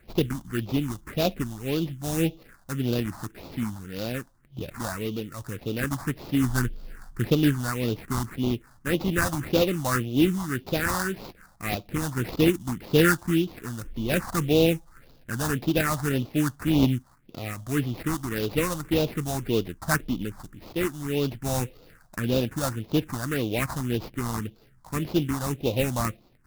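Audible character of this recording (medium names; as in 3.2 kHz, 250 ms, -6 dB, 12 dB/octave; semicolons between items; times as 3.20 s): aliases and images of a low sample rate 3.2 kHz, jitter 20%; phasing stages 4, 1.8 Hz, lowest notch 400–1700 Hz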